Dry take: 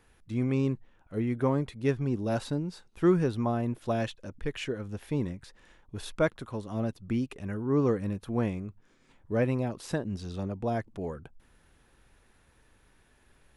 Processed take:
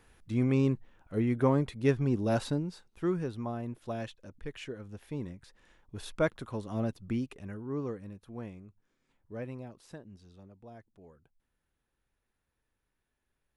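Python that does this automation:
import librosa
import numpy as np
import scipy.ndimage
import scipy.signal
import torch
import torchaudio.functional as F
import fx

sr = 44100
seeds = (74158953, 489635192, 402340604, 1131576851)

y = fx.gain(x, sr, db=fx.line((2.47, 1.0), (3.07, -7.5), (5.19, -7.5), (6.45, -1.0), (6.98, -1.0), (8.09, -13.0), (9.58, -13.0), (10.51, -20.0)))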